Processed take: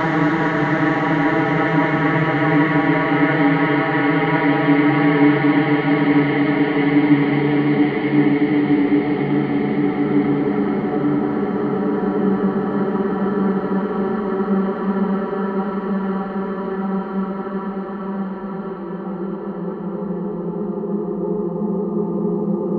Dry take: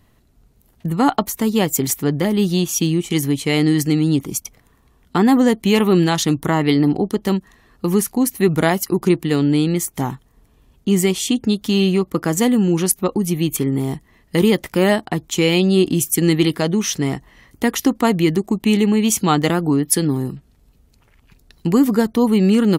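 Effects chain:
auto-filter low-pass sine 0.19 Hz 300–1,900 Hz
extreme stretch with random phases 16×, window 1.00 s, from 0:06.39
mains-hum notches 50/100/150 Hz

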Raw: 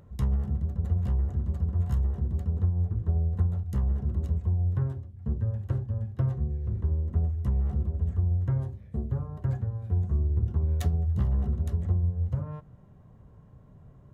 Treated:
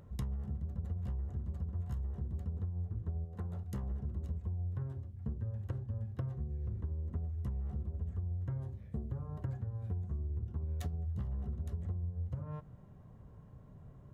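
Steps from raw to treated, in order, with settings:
0:03.24–0:03.91: high-pass filter 350 Hz → 120 Hz 6 dB per octave
downward compressor, threshold −33 dBFS, peak gain reduction 12.5 dB
level −2 dB

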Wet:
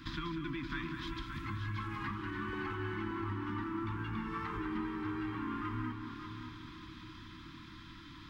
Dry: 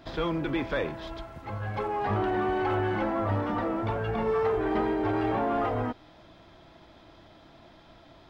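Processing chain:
Chebyshev band-stop filter 330–1,000 Hz, order 4
0:02.53–0:05.35: flat-topped bell 570 Hz +14 dB 1.2 octaves
downward compressor 5 to 1, threshold −42 dBFS, peak gain reduction 15.5 dB
echo machine with several playback heads 192 ms, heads first and third, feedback 48%, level −9 dB
level +4 dB

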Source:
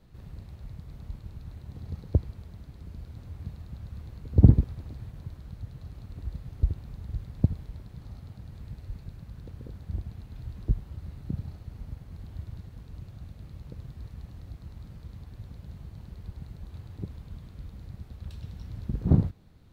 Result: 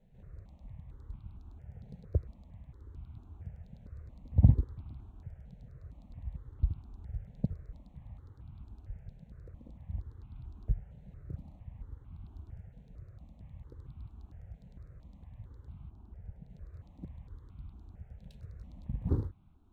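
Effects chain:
adaptive Wiener filter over 9 samples
0:15.89–0:16.50: high-shelf EQ 2,500 Hz −10 dB
step-sequenced phaser 4.4 Hz 320–1,800 Hz
level −4.5 dB

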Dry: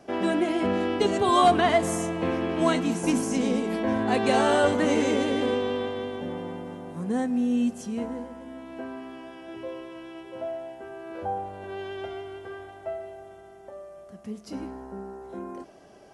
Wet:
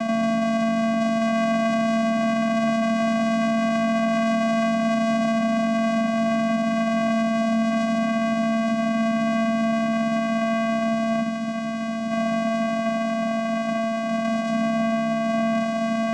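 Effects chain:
compressor on every frequency bin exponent 0.2
high-shelf EQ 5,900 Hz +8.5 dB
time-frequency box erased 0:11.21–0:12.10, 250–3,900 Hz
low-shelf EQ 210 Hz −4.5 dB
on a send: feedback delay with all-pass diffusion 1,433 ms, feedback 68%, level −8 dB
on the sum: channel vocoder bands 4, square 225 Hz
brickwall limiter −10 dBFS, peak gain reduction 5.5 dB
level −5 dB

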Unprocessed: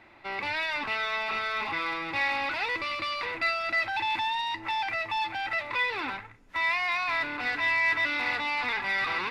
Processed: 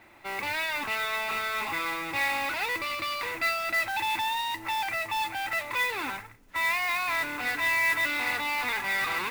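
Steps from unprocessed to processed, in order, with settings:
noise that follows the level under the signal 15 dB

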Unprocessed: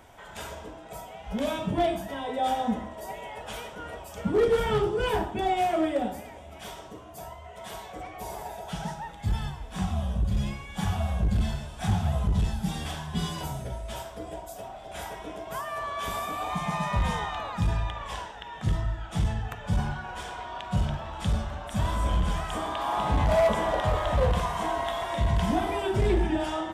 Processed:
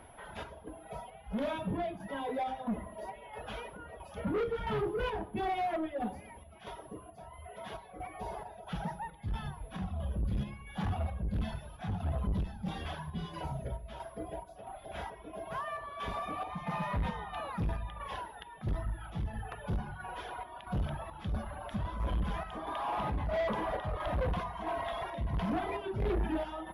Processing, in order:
reverb reduction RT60 1.1 s
steady tone 11,000 Hz −34 dBFS
square-wave tremolo 1.5 Hz, depth 60%, duty 65%
soft clipping −30.5 dBFS, distortion −7 dB
high-frequency loss of the air 260 metres
on a send: convolution reverb RT60 0.90 s, pre-delay 14 ms, DRR 17.5 dB
on the sum: level +2 dB

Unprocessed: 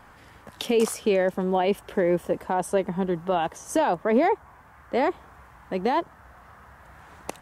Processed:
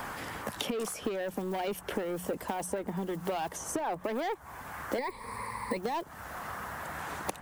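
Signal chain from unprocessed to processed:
one scale factor per block 7 bits
high-shelf EQ 7,100 Hz +7.5 dB
mains-hum notches 60/120/180 Hz
soft clipping −20.5 dBFS, distortion −12 dB
0:04.98–0:05.77: EQ curve with evenly spaced ripples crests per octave 0.93, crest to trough 18 dB
downward compressor 5 to 1, threshold −33 dBFS, peak gain reduction 13 dB
harmonic and percussive parts rebalanced harmonic −4 dB
multiband upward and downward compressor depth 70%
level +3.5 dB

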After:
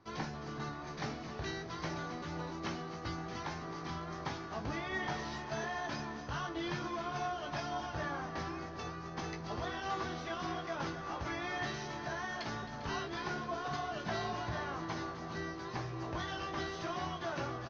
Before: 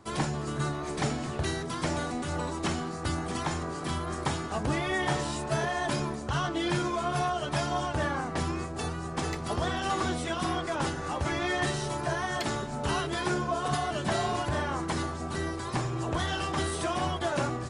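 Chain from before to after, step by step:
Chebyshev low-pass with heavy ripple 6,300 Hz, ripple 3 dB
double-tracking delay 18 ms −7 dB
echo machine with several playback heads 133 ms, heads second and third, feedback 49%, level −13 dB
level −8 dB

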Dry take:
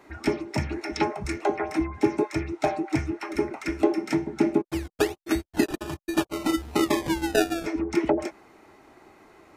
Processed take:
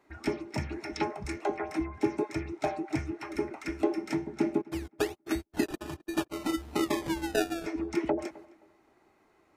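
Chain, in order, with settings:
noise gate −48 dBFS, range −7 dB
on a send: tape delay 264 ms, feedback 26%, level −20 dB, low-pass 2,200 Hz
on the sum: level −6 dB

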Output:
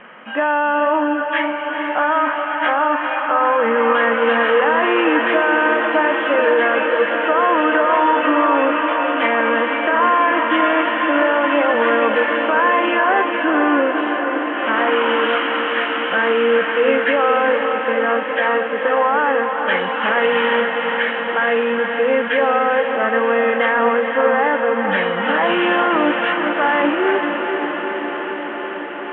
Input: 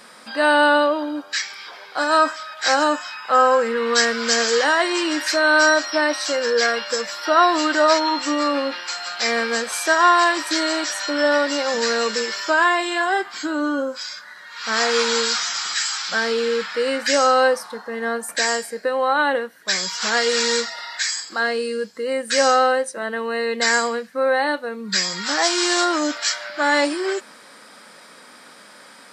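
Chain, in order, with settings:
hearing-aid frequency compression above 2,300 Hz 1.5 to 1
Chebyshev low-pass filter 3,100 Hz, order 8
dynamic equaliser 1,000 Hz, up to +7 dB, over −32 dBFS, Q 2.2
brickwall limiter −15 dBFS, peak gain reduction 15 dB
feedback delay with all-pass diffusion 464 ms, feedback 78%, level −6 dB
level +6 dB

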